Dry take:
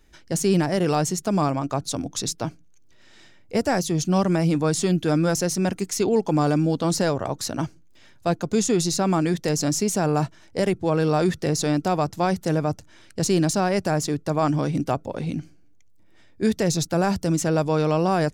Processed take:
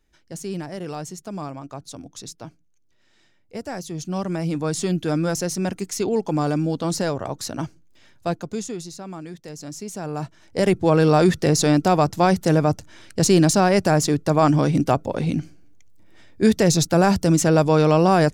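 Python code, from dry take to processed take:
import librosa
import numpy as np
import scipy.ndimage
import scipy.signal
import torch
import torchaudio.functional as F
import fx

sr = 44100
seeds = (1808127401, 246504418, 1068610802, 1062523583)

y = fx.gain(x, sr, db=fx.line((3.61, -10.0), (4.83, -1.5), (8.28, -1.5), (8.93, -14.0), (9.54, -14.0), (10.16, -7.0), (10.73, 5.0)))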